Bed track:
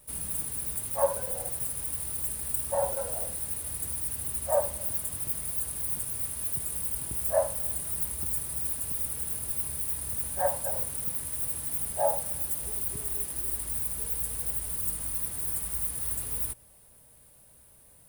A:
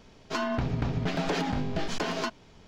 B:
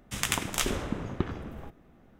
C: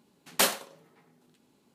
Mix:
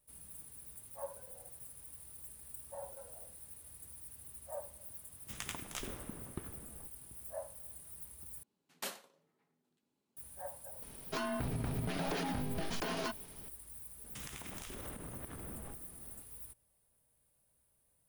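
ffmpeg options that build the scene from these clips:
ffmpeg -i bed.wav -i cue0.wav -i cue1.wav -i cue2.wav -filter_complex "[2:a]asplit=2[link_01][link_02];[0:a]volume=-18.5dB[link_03];[1:a]acompressor=threshold=-31dB:ratio=6:attack=3.2:release=140:knee=1:detection=peak[link_04];[link_02]acompressor=threshold=-41dB:ratio=12:attack=1.4:release=79:knee=1:detection=peak[link_05];[link_03]asplit=2[link_06][link_07];[link_06]atrim=end=8.434[link_08];[3:a]atrim=end=1.74,asetpts=PTS-STARTPTS,volume=-18dB[link_09];[link_07]atrim=start=10.166[link_10];[link_01]atrim=end=2.19,asetpts=PTS-STARTPTS,volume=-14.5dB,afade=type=in:duration=0.004:curve=hsin,afade=type=out:start_time=2.186:duration=0.004:curve=hsin,adelay=227997S[link_11];[link_04]atrim=end=2.67,asetpts=PTS-STARTPTS,volume=-2dB,afade=type=in:duration=0.004:curve=hsin,afade=type=out:start_time=2.666:duration=0.004:curve=hsin,adelay=477162S[link_12];[link_05]atrim=end=2.19,asetpts=PTS-STARTPTS,volume=-2dB,afade=type=in:duration=0.004:curve=hsin,afade=type=out:start_time=2.186:duration=0.004:curve=hsin,adelay=14040[link_13];[link_08][link_09]acrossfade=duration=0.004:curve1=hsin:curve2=hsin[link_14];[link_14][link_10]acrossfade=duration=0.004:curve1=hsin:curve2=hsin[link_15];[link_15][link_11][link_12][link_13]amix=inputs=4:normalize=0" out.wav

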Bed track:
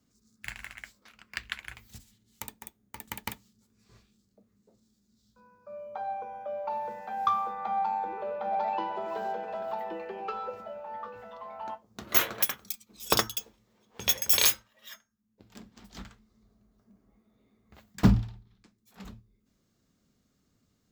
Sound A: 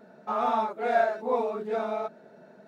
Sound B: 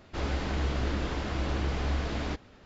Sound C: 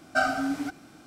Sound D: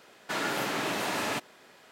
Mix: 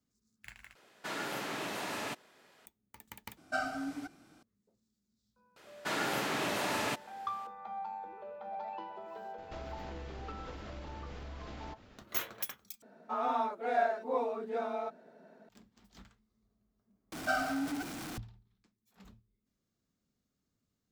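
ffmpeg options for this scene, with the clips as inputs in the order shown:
ffmpeg -i bed.wav -i cue0.wav -i cue1.wav -i cue2.wav -i cue3.wav -filter_complex "[4:a]asplit=2[link_01][link_02];[3:a]asplit=2[link_03][link_04];[0:a]volume=-11.5dB[link_05];[link_02]equalizer=frequency=75:width=1.5:gain=6[link_06];[2:a]acompressor=threshold=-39dB:ratio=6:attack=3.2:release=140:knee=1:detection=peak[link_07];[1:a]afreqshift=15[link_08];[link_04]aeval=exprs='val(0)+0.5*0.0376*sgn(val(0))':channel_layout=same[link_09];[link_05]asplit=5[link_10][link_11][link_12][link_13][link_14];[link_10]atrim=end=0.754[link_15];[link_01]atrim=end=1.91,asetpts=PTS-STARTPTS,volume=-7.5dB[link_16];[link_11]atrim=start=2.656:end=3.374[link_17];[link_03]atrim=end=1.06,asetpts=PTS-STARTPTS,volume=-10dB[link_18];[link_12]atrim=start=4.426:end=12.824[link_19];[link_08]atrim=end=2.67,asetpts=PTS-STARTPTS,volume=-6dB[link_20];[link_13]atrim=start=15.486:end=17.124[link_21];[link_09]atrim=end=1.06,asetpts=PTS-STARTPTS,volume=-9dB[link_22];[link_14]atrim=start=18.176[link_23];[link_06]atrim=end=1.91,asetpts=PTS-STARTPTS,volume=-3dB,afade=type=in:duration=0.004:curve=hsin,afade=type=out:start_time=1.906:duration=0.004:curve=hsin,adelay=5560[link_24];[link_07]atrim=end=2.65,asetpts=PTS-STARTPTS,volume=-3.5dB,afade=type=in:duration=0.004:curve=hsin,afade=type=out:start_time=2.646:duration=0.004:curve=hsin,adelay=413658S[link_25];[link_15][link_16]acrossfade=duration=0.004:curve1=hsin:curve2=hsin[link_26];[link_26][link_17]acrossfade=duration=0.004:curve1=hsin:curve2=hsin[link_27];[link_27][link_18]acrossfade=duration=0.004:curve1=hsin:curve2=hsin[link_28];[link_28][link_19]acrossfade=duration=0.004:curve1=hsin:curve2=hsin[link_29];[link_29][link_20]acrossfade=duration=0.004:curve1=hsin:curve2=hsin[link_30];[link_30][link_21]acrossfade=duration=0.004:curve1=hsin:curve2=hsin[link_31];[link_31][link_22]acrossfade=duration=0.004:curve1=hsin:curve2=hsin[link_32];[link_32][link_23]acrossfade=duration=0.004:curve1=hsin:curve2=hsin[link_33];[link_33][link_24][link_25]amix=inputs=3:normalize=0" out.wav

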